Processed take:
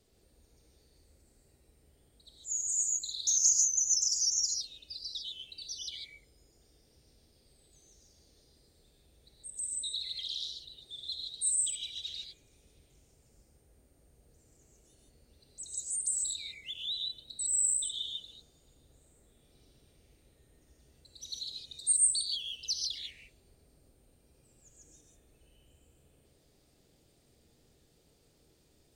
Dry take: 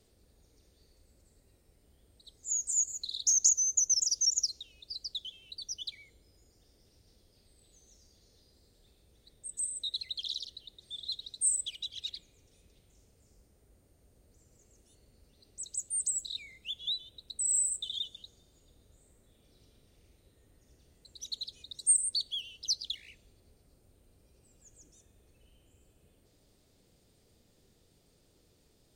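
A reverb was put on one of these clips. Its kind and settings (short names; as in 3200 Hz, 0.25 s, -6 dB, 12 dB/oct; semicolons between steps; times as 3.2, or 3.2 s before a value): non-linear reverb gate 0.17 s rising, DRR -1 dB; gain -3 dB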